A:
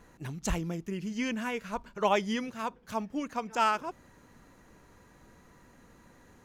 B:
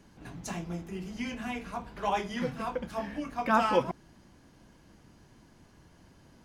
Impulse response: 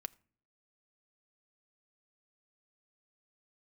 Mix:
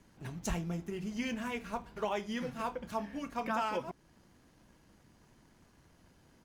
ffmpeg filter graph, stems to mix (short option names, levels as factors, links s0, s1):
-filter_complex "[0:a]highshelf=f=8600:g=-9,aeval=exprs='sgn(val(0))*max(abs(val(0))-0.00168,0)':c=same,volume=0.631[s0];[1:a]adelay=0.7,volume=0.473[s1];[s0][s1]amix=inputs=2:normalize=0,highshelf=f=9900:g=7,alimiter=limit=0.0668:level=0:latency=1:release=422"